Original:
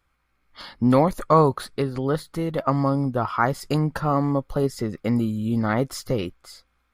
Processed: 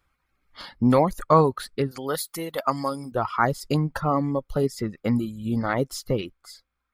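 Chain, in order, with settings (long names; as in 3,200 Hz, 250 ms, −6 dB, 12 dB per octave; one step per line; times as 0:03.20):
reverb reduction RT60 1.1 s
0:01.91–0:03.12: RIAA equalisation recording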